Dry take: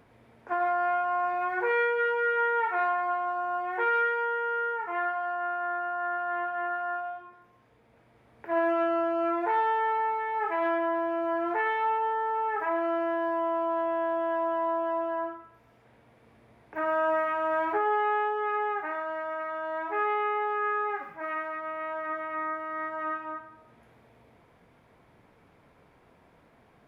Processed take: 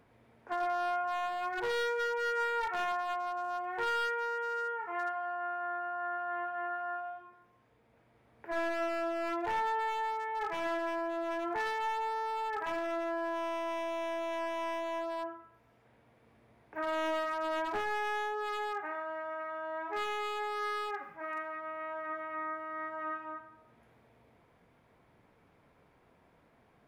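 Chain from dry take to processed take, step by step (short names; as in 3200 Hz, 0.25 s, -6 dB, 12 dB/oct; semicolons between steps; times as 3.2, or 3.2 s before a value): one-sided fold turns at -25 dBFS; gain -5.5 dB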